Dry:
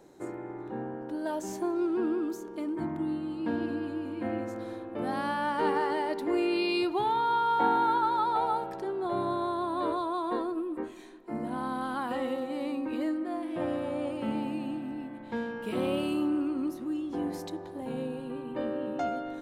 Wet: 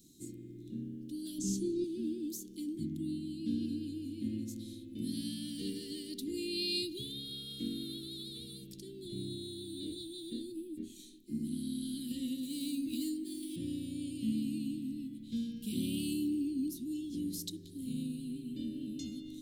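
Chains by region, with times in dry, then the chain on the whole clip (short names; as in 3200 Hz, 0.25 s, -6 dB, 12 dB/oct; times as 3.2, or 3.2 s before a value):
1.38–1.84 LPF 8000 Hz + low shelf 410 Hz +10 dB + doubler 20 ms -12.5 dB
12.43–13.56 median filter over 3 samples + high shelf 4000 Hz +9.5 dB
whole clip: elliptic band-stop 260–3500 Hz, stop band 80 dB; high shelf 4700 Hz +11 dB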